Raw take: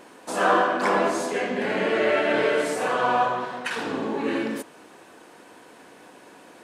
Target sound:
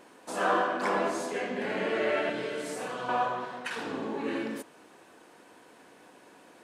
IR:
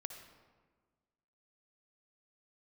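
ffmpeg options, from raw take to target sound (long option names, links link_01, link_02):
-filter_complex "[0:a]asettb=1/sr,asplit=3[link_01][link_02][link_03];[link_01]atrim=end=2.294[link_04];[link_02]atrim=start=2.29:end=3.09,asetpts=PTS-STARTPTS,afade=type=in:duration=0.004:curve=qsin,afade=type=out:start_time=0.796:duration=0.004:curve=qsin,acrossover=split=320|3000[link_05][link_06][link_07];[link_06]acompressor=threshold=-29dB:ratio=6[link_08];[link_05][link_08][link_07]amix=inputs=3:normalize=0[link_09];[link_03]atrim=start=3.086[link_10];[link_04][link_09]acrossfade=duration=0.004:curve1=hsin:curve2=qsin[link_11];[link_11][link_10]acrossfade=duration=0.004:curve1=qsin:curve2=hsin,volume=-6.5dB"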